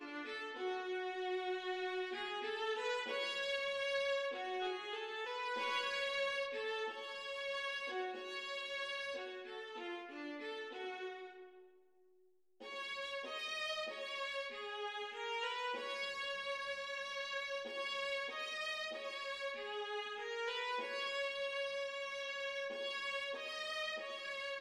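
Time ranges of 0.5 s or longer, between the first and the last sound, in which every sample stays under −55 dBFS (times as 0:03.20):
0:11.63–0:12.61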